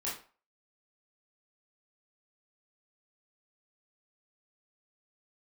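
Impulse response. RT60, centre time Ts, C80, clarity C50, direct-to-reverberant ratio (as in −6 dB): 0.40 s, 37 ms, 11.5 dB, 5.5 dB, −7.5 dB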